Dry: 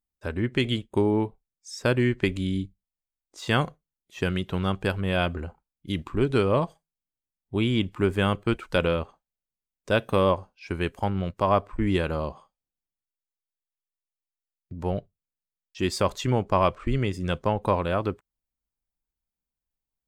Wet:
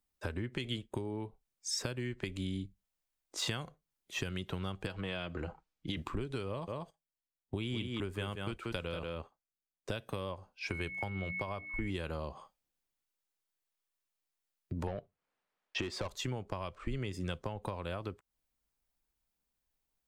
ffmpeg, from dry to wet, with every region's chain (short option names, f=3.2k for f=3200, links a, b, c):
-filter_complex "[0:a]asettb=1/sr,asplit=3[a][b][c];[a]atrim=end=4.864[d];[b]atrim=start=4.86:end=5.97,asetpts=PTS-STARTPTS,afade=t=in:d=0.004:c=qsin,afade=t=out:st=1.106:d=0.004:c=qsin,lowpass=6.2k,aecho=1:1:6.3:0.37,atrim=end_sample=48951,acrossover=split=430|2700[e][f][g];[e]acompressor=threshold=-32dB:ratio=4[h];[f]acompressor=threshold=-32dB:ratio=4[i];[g]acompressor=threshold=-39dB:ratio=4[j];[h][i][j]amix=inputs=3:normalize=0[k];[c]atrim=start=5.966[l];[d][k]acrossfade=d=0.004:c1=hsin:c2=qsin[m];[m][l]acrossfade=d=0.004:c1=qsin:c2=hsin,asettb=1/sr,asplit=3[n][o][p];[n]atrim=end=6.494[q];[o]atrim=start=6.49:end=9.97,asetpts=PTS-STARTPTS,afade=t=in:d=0.004:c=qsin,afade=t=out:st=3.476:d=0.004:c=qsin,agate=range=-12dB:threshold=-46dB:ratio=16:release=100:detection=peak,aecho=1:1:185:0.422,atrim=end_sample=153468[r];[p]atrim=start=9.966[s];[q][r]acrossfade=d=0.004:c1=hsin:c2=qsin[t];[t][s]acrossfade=d=0.004:c1=qsin:c2=hsin,asettb=1/sr,asplit=3[u][v][w];[u]atrim=end=10.714[x];[v]atrim=start=10.71:end=11.9,asetpts=PTS-STARTPTS,afade=t=in:d=0.004:c=qsin,afade=t=out:st=1.186:d=0.004:c=qsin,agate=range=-11dB:threshold=-42dB:ratio=16:release=100:detection=peak,aeval=exprs='val(0)+0.02*sin(2*PI*2200*n/s)':c=same,bandreject=f=60:t=h:w=6,bandreject=f=120:t=h:w=6,bandreject=f=180:t=h:w=6,bandreject=f=240:t=h:w=6,bandreject=f=300:t=h:w=6[y];[w]atrim=start=11.896[z];[x][y]acrossfade=d=0.004:c1=hsin:c2=qsin[aa];[aa][z]acrossfade=d=0.004:c1=qsin:c2=hsin,asettb=1/sr,asplit=3[ab][ac][ad];[ab]atrim=end=14.874[ae];[ac]atrim=start=14.87:end=16.08,asetpts=PTS-STARTPTS,afade=t=in:d=0.004:c=qsin,afade=t=out:st=1.206:d=0.004:c=qsin,highshelf=f=3.3k:g=-11,asplit=2[af][ag];[ag]highpass=f=720:p=1,volume=22dB,asoftclip=type=tanh:threshold=-10dB[ah];[af][ah]amix=inputs=2:normalize=0,lowpass=f=1.5k:p=1,volume=-6dB[ai];[ad]atrim=start=16.076[aj];[ae][ai]acrossfade=d=0.004:c1=hsin:c2=qsin[ak];[ak][aj]acrossfade=d=0.004:c1=qsin:c2=hsin,acompressor=threshold=-37dB:ratio=4,bass=f=250:g=-4,treble=f=4k:g=-1,acrossover=split=140|3000[al][am][an];[am]acompressor=threshold=-43dB:ratio=6[ao];[al][ao][an]amix=inputs=3:normalize=0,volume=6dB"